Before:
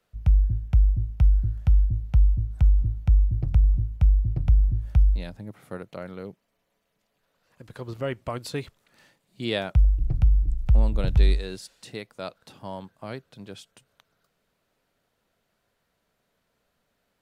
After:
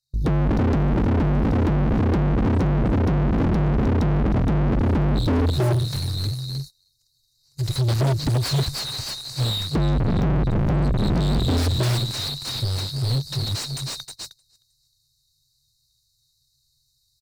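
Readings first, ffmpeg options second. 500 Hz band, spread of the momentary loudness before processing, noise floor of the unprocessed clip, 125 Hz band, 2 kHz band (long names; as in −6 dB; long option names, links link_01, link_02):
+9.0 dB, 17 LU, −75 dBFS, +5.0 dB, +7.0 dB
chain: -filter_complex "[0:a]asplit=5[link_01][link_02][link_03][link_04][link_05];[link_02]adelay=310,afreqshift=36,volume=-8dB[link_06];[link_03]adelay=620,afreqshift=72,volume=-17.9dB[link_07];[link_04]adelay=930,afreqshift=108,volume=-27.8dB[link_08];[link_05]adelay=1240,afreqshift=144,volume=-37.7dB[link_09];[link_01][link_06][link_07][link_08][link_09]amix=inputs=5:normalize=0,afftfilt=real='re*(1-between(b*sr/4096,150,3700))':imag='im*(1-between(b*sr/4096,150,3700))':win_size=4096:overlap=0.75,asubboost=boost=2.5:cutoff=55,dynaudnorm=framelen=120:gausssize=5:maxgain=14.5dB,alimiter=limit=-9.5dB:level=0:latency=1:release=40,acompressor=threshold=-20dB:ratio=6,aeval=exprs='0.0841*(abs(mod(val(0)/0.0841+3,4)-2)-1)':channel_layout=same,asplit=2[link_10][link_11];[link_11]highpass=frequency=720:poles=1,volume=32dB,asoftclip=type=tanh:threshold=-21.5dB[link_12];[link_10][link_12]amix=inputs=2:normalize=0,lowpass=frequency=1700:poles=1,volume=-6dB,agate=range=-23dB:threshold=-42dB:ratio=16:detection=peak,volume=7.5dB"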